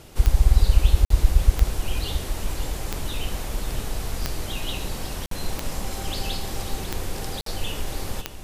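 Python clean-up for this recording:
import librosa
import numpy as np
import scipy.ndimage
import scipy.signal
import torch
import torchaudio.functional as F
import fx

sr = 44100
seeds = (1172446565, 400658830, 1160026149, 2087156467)

y = fx.fix_declick_ar(x, sr, threshold=10.0)
y = fx.fix_interpolate(y, sr, at_s=(1.05, 5.26, 7.41), length_ms=53.0)
y = fx.fix_echo_inverse(y, sr, delay_ms=545, level_db=-11.5)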